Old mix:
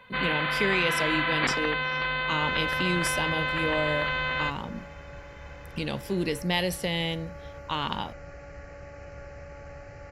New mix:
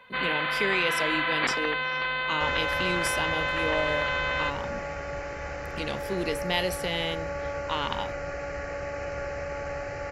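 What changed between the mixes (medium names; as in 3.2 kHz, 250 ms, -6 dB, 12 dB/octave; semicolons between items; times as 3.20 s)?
second sound +12.0 dB; master: add tone controls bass -8 dB, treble -1 dB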